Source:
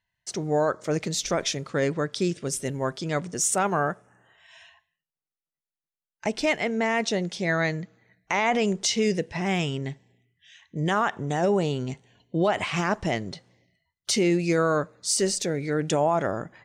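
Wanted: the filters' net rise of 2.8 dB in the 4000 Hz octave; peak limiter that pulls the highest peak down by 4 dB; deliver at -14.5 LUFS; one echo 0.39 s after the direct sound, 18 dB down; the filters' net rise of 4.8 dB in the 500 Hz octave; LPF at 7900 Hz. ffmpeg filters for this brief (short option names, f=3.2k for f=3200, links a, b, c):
-af "lowpass=7.9k,equalizer=f=500:t=o:g=6,equalizer=f=4k:t=o:g=4,alimiter=limit=-13.5dB:level=0:latency=1,aecho=1:1:390:0.126,volume=10dB"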